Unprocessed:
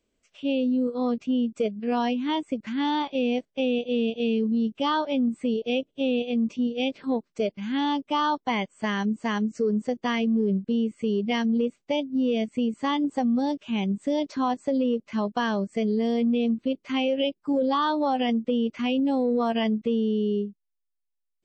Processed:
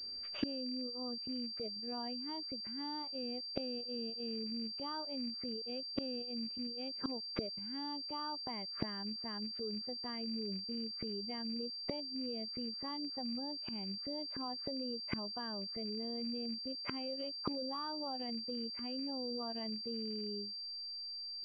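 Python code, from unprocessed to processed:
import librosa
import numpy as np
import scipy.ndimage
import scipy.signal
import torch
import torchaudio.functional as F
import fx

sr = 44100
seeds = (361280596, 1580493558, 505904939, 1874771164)

y = fx.rattle_buzz(x, sr, strikes_db=-28.0, level_db=-31.0)
y = fx.gate_flip(y, sr, shuts_db=-32.0, range_db=-29)
y = fx.pwm(y, sr, carrier_hz=4700.0)
y = y * librosa.db_to_amplitude(10.5)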